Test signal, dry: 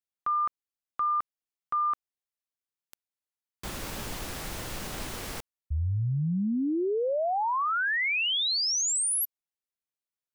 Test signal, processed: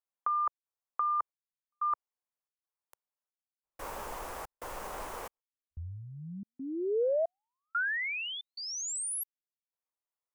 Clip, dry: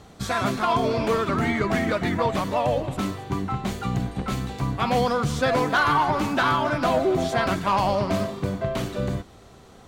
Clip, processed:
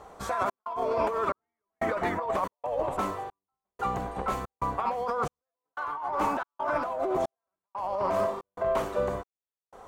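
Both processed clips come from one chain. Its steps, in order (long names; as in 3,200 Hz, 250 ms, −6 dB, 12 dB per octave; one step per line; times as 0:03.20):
octave-band graphic EQ 125/250/500/1,000/4,000 Hz −10/−5/+7/+11/−7 dB
compressor whose output falls as the input rises −20 dBFS, ratio −1
gate pattern "xxx.xxxx...x" 91 BPM −60 dB
level −8.5 dB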